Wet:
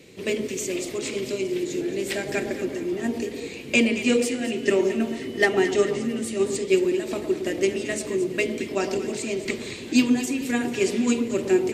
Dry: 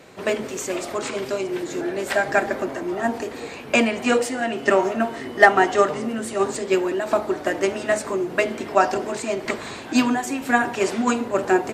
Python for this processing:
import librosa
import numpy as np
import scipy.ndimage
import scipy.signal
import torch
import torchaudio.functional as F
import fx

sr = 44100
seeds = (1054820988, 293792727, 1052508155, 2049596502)

y = fx.band_shelf(x, sr, hz=1000.0, db=-15.0, octaves=1.7)
y = fx.echo_alternate(y, sr, ms=111, hz=1200.0, feedback_pct=63, wet_db=-8.0)